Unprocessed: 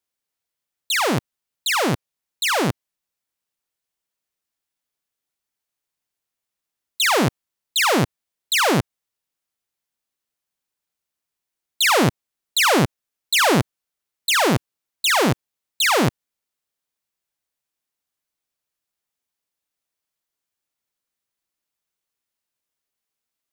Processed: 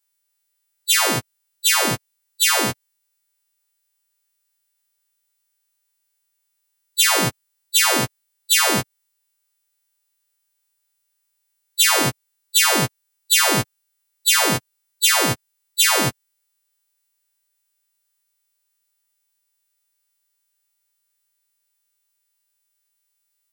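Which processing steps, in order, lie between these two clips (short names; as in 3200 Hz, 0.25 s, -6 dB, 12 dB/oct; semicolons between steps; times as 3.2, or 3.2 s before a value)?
frequency quantiser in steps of 2 st; compressor 4:1, threshold -13 dBFS, peak gain reduction 6.5 dB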